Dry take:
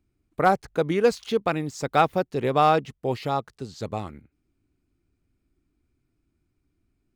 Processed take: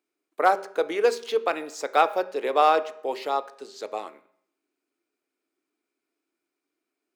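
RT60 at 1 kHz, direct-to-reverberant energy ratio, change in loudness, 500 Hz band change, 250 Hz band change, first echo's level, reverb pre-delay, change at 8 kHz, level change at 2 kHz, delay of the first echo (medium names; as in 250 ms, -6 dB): 0.65 s, 11.5 dB, -0.5 dB, -0.5 dB, -9.0 dB, no echo, 5 ms, 0.0 dB, +0.5 dB, no echo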